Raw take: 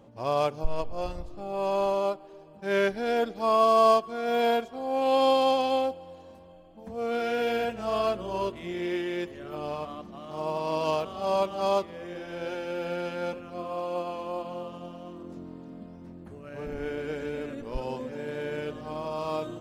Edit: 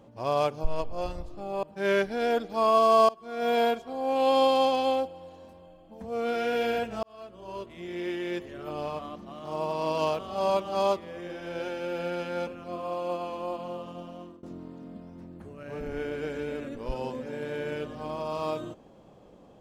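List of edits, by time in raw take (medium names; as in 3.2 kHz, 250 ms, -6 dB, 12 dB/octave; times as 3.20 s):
1.63–2.49 s: delete
3.95–4.33 s: fade in, from -24 dB
7.89–9.29 s: fade in
14.98–15.29 s: fade out equal-power, to -21.5 dB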